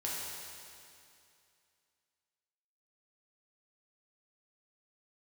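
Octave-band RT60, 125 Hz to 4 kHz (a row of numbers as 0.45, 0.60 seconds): 2.5, 2.5, 2.5, 2.5, 2.5, 2.5 seconds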